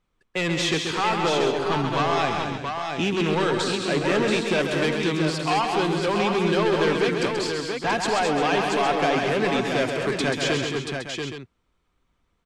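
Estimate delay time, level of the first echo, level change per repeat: 0.133 s, -6.0 dB, no steady repeat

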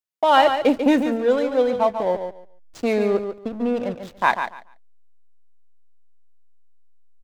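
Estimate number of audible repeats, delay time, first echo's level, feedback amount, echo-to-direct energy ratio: 2, 0.143 s, -8.0 dB, 18%, -8.0 dB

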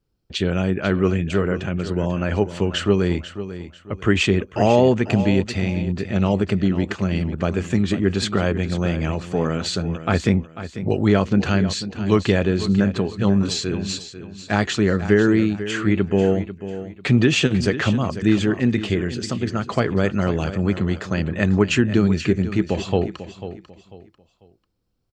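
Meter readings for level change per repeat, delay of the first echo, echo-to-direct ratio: -10.5 dB, 0.494 s, -12.0 dB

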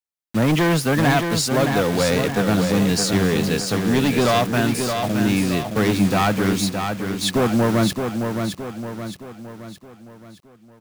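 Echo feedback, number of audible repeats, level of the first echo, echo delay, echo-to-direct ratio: 48%, 5, -6.0 dB, 0.618 s, -5.0 dB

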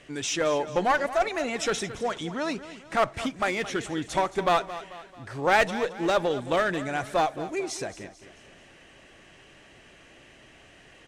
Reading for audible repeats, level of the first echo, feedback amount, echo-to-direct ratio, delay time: 4, -14.5 dB, 46%, -13.5 dB, 0.22 s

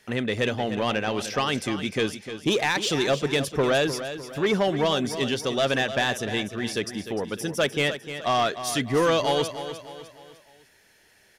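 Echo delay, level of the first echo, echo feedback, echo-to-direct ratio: 0.302 s, -11.0 dB, 43%, -10.0 dB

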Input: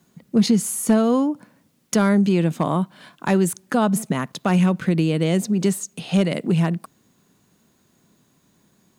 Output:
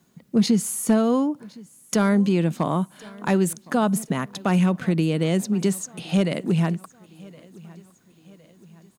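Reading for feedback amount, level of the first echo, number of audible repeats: 50%, -23.0 dB, 2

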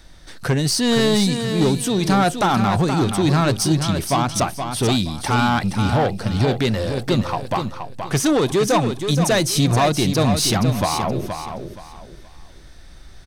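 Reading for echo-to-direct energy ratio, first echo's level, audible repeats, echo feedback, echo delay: -7.0 dB, -7.5 dB, 3, 27%, 0.473 s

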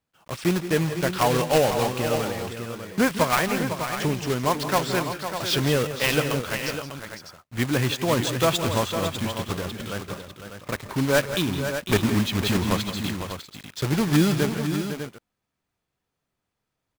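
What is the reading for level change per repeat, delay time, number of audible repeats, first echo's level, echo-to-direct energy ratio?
no steady repeat, 0.166 s, 3, -14.0 dB, -5.5 dB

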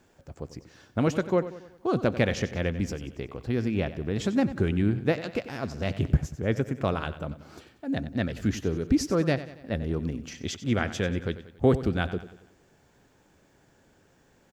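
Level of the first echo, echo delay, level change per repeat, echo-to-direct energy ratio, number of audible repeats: -14.0 dB, 93 ms, -6.0 dB, -13.0 dB, 4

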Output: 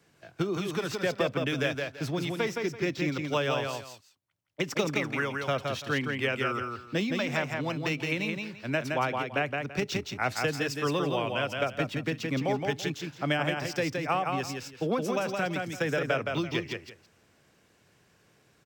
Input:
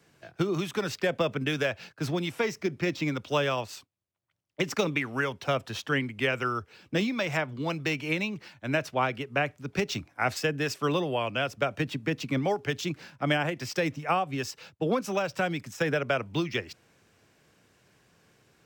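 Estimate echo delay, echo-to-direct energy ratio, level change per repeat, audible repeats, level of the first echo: 0.168 s, -4.0 dB, -13.0 dB, 2, -4.0 dB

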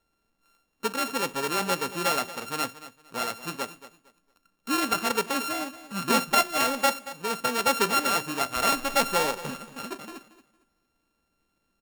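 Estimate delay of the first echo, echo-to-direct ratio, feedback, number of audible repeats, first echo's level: 0.229 s, -15.0 dB, 25%, 2, -15.5 dB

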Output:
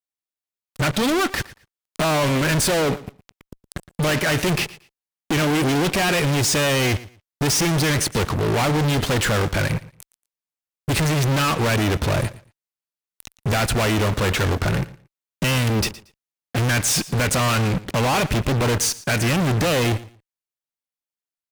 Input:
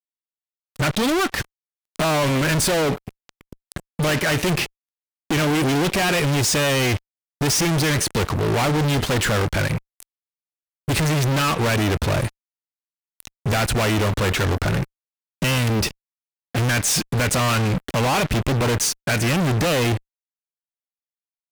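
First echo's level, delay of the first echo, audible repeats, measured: -18.5 dB, 0.115 s, 2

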